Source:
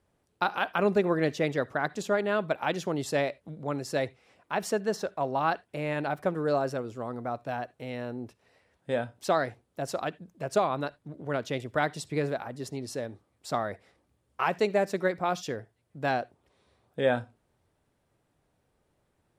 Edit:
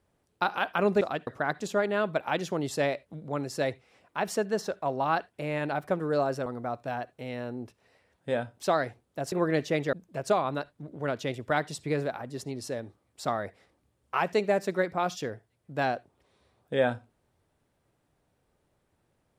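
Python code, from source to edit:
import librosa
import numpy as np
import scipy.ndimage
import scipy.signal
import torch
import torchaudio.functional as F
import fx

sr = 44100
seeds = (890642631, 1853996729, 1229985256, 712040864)

y = fx.edit(x, sr, fx.swap(start_s=1.01, length_s=0.61, other_s=9.93, other_length_s=0.26),
    fx.cut(start_s=6.81, length_s=0.26), tone=tone)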